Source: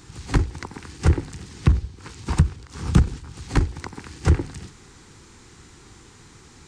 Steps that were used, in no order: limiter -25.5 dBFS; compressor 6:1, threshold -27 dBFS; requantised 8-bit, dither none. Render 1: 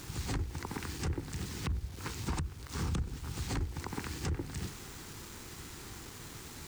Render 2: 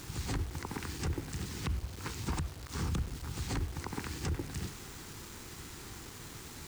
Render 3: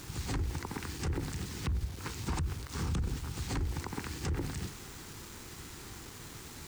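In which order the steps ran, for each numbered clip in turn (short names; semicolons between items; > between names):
requantised > compressor > limiter; compressor > requantised > limiter; requantised > limiter > compressor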